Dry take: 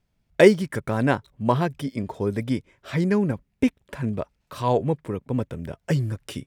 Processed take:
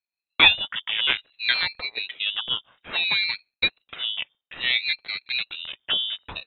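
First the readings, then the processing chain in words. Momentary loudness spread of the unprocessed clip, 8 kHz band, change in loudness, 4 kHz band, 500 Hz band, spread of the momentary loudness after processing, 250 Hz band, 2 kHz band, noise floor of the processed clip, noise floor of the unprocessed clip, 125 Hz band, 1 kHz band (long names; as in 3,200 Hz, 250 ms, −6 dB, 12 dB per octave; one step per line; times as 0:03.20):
14 LU, can't be measured, +1.0 dB, +19.5 dB, −21.5 dB, 14 LU, −22.5 dB, +8.5 dB, below −85 dBFS, −73 dBFS, −24.0 dB, −6.0 dB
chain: noise gate with hold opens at −47 dBFS
high-shelf EQ 2,100 Hz +9.5 dB
voice inversion scrambler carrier 3,400 Hz
ring modulator whose carrier an LFO sweeps 540 Hz, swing 70%, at 0.59 Hz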